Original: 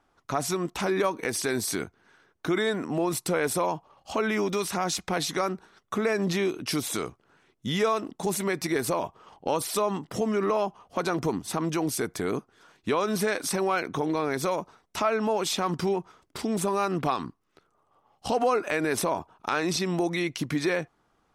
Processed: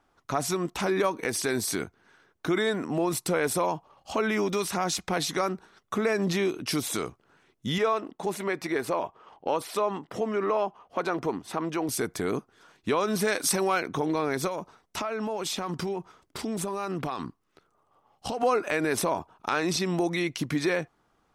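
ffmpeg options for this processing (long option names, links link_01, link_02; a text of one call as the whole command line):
ffmpeg -i in.wav -filter_complex "[0:a]asettb=1/sr,asplit=3[link_01][link_02][link_03];[link_01]atrim=end=7.784[link_04];[link_02]atrim=start=7.78:end=11.89,asetpts=PTS-STARTPTS,afade=type=in:duration=0.004:curve=qsin,afade=type=out:start_time=4.106:duration=0.004:curve=qsin,bass=frequency=250:gain=-8,treble=frequency=4000:gain=-10[link_05];[link_03]atrim=start=11.886[link_06];[link_04][link_05]acrossfade=duration=0.004:curve1=hsin:curve2=qsin[link_07];[link_07][link_06]acrossfade=duration=0.004:curve1=qsin:curve2=hsin,asettb=1/sr,asplit=3[link_08][link_09][link_10];[link_08]atrim=end=13.254[link_11];[link_09]atrim=start=13.25:end=13.78,asetpts=PTS-STARTPTS,afade=type=in:duration=0.004:curve=qsin,afade=type=out:start_time=0.526:duration=0.004:curve=qsin,highshelf=frequency=3800:gain=6.5[link_12];[link_10]atrim=start=13.776[link_13];[link_11][link_12]acrossfade=duration=0.004:curve1=hsin:curve2=qsin[link_14];[link_14][link_13]acrossfade=duration=0.004:curve1=qsin:curve2=hsin,asettb=1/sr,asplit=3[link_15][link_16][link_17];[link_15]atrim=end=14.474[link_18];[link_16]atrim=start=14.47:end=18.43,asetpts=PTS-STARTPTS,afade=type=in:duration=0.004:curve=qsin,afade=type=out:start_time=3.956:duration=0.004:curve=qsin,acompressor=threshold=-27dB:ratio=6:attack=3.2:release=140:knee=1:detection=peak[link_19];[link_17]atrim=start=18.426[link_20];[link_18][link_19]acrossfade=duration=0.004:curve1=hsin:curve2=qsin[link_21];[link_21][link_20]acrossfade=duration=0.004:curve1=qsin:curve2=hsin" out.wav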